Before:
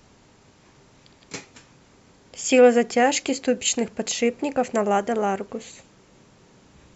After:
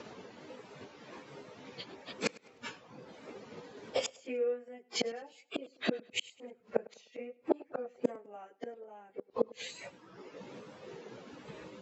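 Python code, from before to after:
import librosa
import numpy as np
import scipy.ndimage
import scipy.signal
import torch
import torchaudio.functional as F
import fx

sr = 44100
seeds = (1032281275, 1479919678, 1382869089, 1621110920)

p1 = fx.dereverb_blind(x, sr, rt60_s=0.73)
p2 = fx.peak_eq(p1, sr, hz=480.0, db=7.5, octaves=0.39)
p3 = fx.transient(p2, sr, attack_db=7, sustain_db=-1)
p4 = fx.wow_flutter(p3, sr, seeds[0], rate_hz=2.1, depth_cents=67.0)
p5 = fx.stretch_vocoder_free(p4, sr, factor=1.7)
p6 = fx.gate_flip(p5, sr, shuts_db=-23.0, range_db=-36)
p7 = fx.bandpass_edges(p6, sr, low_hz=200.0, high_hz=3900.0)
p8 = p7 + fx.echo_feedback(p7, sr, ms=102, feedback_pct=36, wet_db=-22.0, dry=0)
y = F.gain(torch.from_numpy(p8), 8.5).numpy()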